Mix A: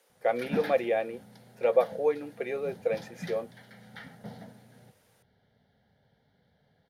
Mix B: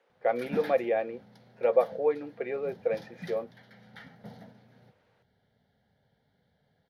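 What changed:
speech: add low-pass filter 2,400 Hz 12 dB per octave
background −3.0 dB

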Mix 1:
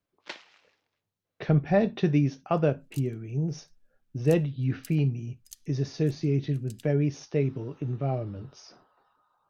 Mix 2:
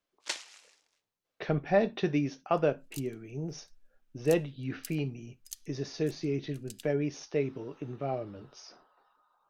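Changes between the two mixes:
first sound: remove high-frequency loss of the air 240 metres
second sound +3.5 dB
master: add parametric band 110 Hz −12.5 dB 1.9 octaves

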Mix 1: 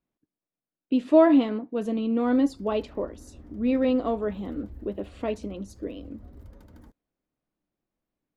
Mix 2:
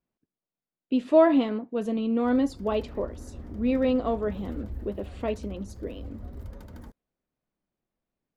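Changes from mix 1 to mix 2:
background +7.0 dB
master: add parametric band 300 Hz −6.5 dB 0.21 octaves

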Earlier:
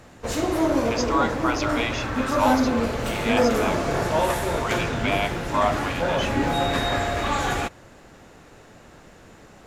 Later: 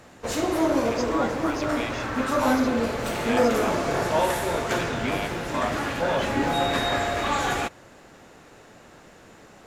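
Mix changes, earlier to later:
speech −7.0 dB
master: add low-shelf EQ 120 Hz −8.5 dB

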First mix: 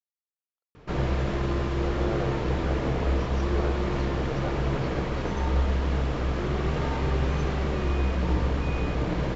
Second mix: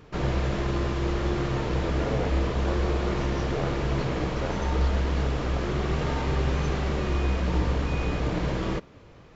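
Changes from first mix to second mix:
background: entry −0.75 s
master: add high-shelf EQ 4,500 Hz +5.5 dB

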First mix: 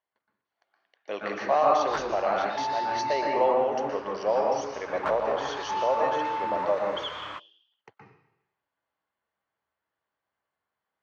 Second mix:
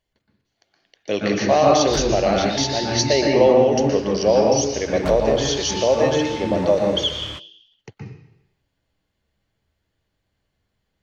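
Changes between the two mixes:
background −6.5 dB
master: remove resonant band-pass 1,100 Hz, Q 1.8

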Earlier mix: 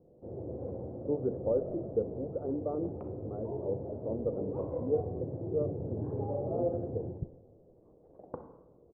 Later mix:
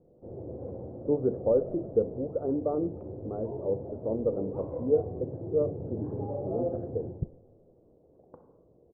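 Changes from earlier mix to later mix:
speech +5.5 dB
second sound −10.5 dB

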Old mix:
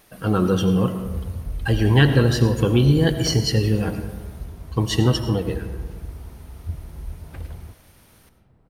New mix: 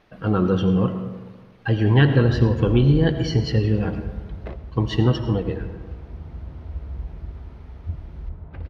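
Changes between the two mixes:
background: entry +1.20 s
master: add high-frequency loss of the air 240 metres

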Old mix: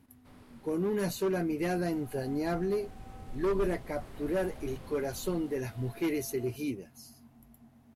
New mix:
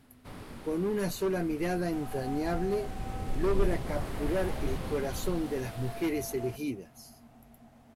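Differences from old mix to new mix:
first sound +11.5 dB
second sound +10.0 dB

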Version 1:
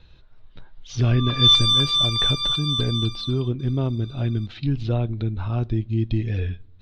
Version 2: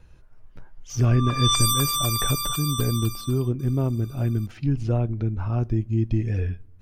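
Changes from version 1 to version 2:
background +4.5 dB
master: remove low-pass with resonance 3,800 Hz, resonance Q 7.6

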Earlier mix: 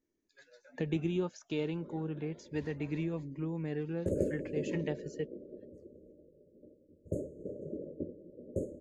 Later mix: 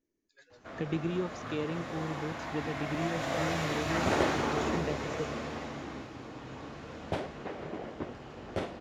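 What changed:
first sound: unmuted
second sound: remove linear-phase brick-wall band-stop 620–6,400 Hz

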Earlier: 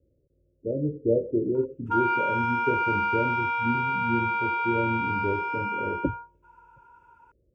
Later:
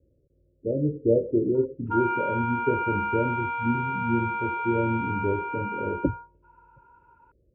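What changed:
speech +3.0 dB
master: add high-frequency loss of the air 440 metres

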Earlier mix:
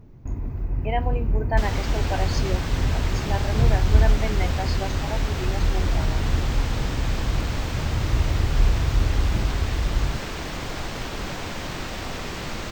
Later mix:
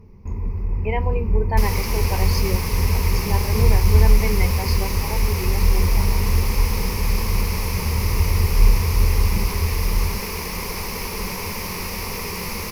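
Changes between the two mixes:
second sound: remove moving average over 4 samples
master: add EQ curve with evenly spaced ripples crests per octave 0.84, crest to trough 13 dB

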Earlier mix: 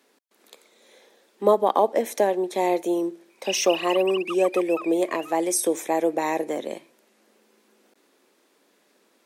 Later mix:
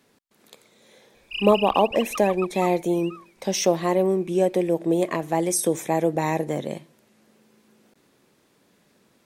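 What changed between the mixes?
background: entry −2.15 s
master: remove high-pass filter 270 Hz 24 dB per octave

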